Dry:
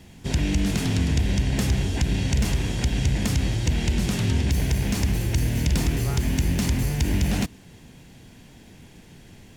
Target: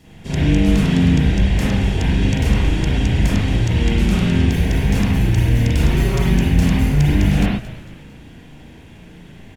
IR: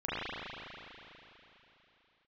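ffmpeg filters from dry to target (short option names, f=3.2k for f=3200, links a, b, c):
-filter_complex "[0:a]asettb=1/sr,asplit=3[a][b][c];[a]atrim=end=5.874[d];[b]atrim=start=5.87:end=6.37,asetpts=PTS-STARTPTS,afade=t=in:d=0.004:c=qsin,afade=t=out:st=0.496:d=0.004:c=qsin,aecho=1:1:5.3:0.8,atrim=end_sample=22050[e];[c]atrim=start=6.366[f];[d][e]acrossfade=d=0.004:c1=hsin:c2=qsin[g];[g][f]acrossfade=d=0.004:c1=qsin:c2=hsin,asplit=5[h][i][j][k][l];[i]adelay=225,afreqshift=-86,volume=-15dB[m];[j]adelay=450,afreqshift=-172,volume=-22.1dB[n];[k]adelay=675,afreqshift=-258,volume=-29.3dB[o];[l]adelay=900,afreqshift=-344,volume=-36.4dB[p];[h][m][n][o][p]amix=inputs=5:normalize=0[q];[1:a]atrim=start_sample=2205,afade=t=out:st=0.19:d=0.01,atrim=end_sample=8820[r];[q][r]afir=irnorm=-1:irlink=0,volume=1dB"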